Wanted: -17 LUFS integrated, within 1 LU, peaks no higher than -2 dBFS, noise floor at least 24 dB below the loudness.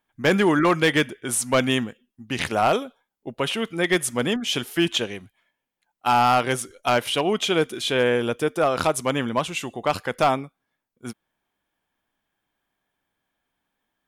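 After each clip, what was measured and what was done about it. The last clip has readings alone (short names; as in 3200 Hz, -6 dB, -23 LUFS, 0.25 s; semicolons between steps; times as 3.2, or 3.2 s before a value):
clipped 0.6%; flat tops at -12.0 dBFS; loudness -22.5 LUFS; peak -12.0 dBFS; loudness target -17.0 LUFS
-> clip repair -12 dBFS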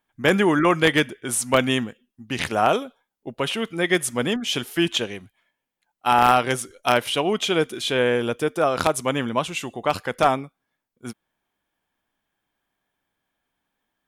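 clipped 0.0%; loudness -22.0 LUFS; peak -3.0 dBFS; loudness target -17.0 LUFS
-> gain +5 dB; limiter -2 dBFS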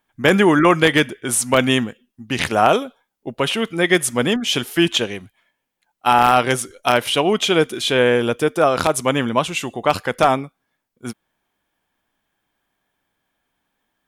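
loudness -17.5 LUFS; peak -2.0 dBFS; noise floor -76 dBFS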